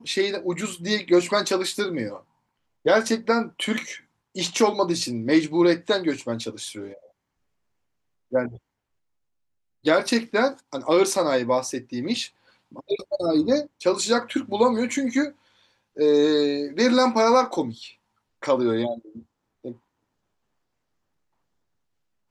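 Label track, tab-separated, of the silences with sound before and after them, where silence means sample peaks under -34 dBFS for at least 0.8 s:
6.930000	8.330000	silence
8.560000	9.850000	silence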